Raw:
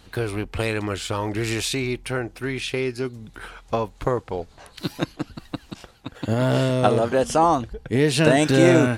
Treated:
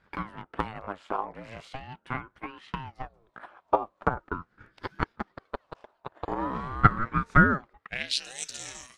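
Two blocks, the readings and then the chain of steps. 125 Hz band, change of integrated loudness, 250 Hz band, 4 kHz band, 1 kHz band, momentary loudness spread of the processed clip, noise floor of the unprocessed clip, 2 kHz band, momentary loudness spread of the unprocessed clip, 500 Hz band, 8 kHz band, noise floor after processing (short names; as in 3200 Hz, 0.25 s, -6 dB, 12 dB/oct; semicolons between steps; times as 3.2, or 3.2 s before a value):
-8.5 dB, -6.5 dB, -11.0 dB, -8.0 dB, -3.0 dB, 19 LU, -51 dBFS, -2.5 dB, 19 LU, -15.0 dB, n/a, -72 dBFS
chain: band-pass sweep 840 Hz -> 6500 Hz, 7.67–8.26; transient shaper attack +11 dB, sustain -1 dB; ring modulator with a swept carrier 410 Hz, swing 70%, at 0.42 Hz; gain -1 dB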